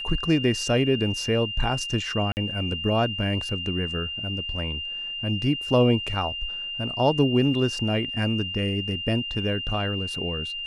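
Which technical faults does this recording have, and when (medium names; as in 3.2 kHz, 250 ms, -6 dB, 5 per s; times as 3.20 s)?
whine 2.8 kHz -30 dBFS
2.32–2.37 s: dropout 49 ms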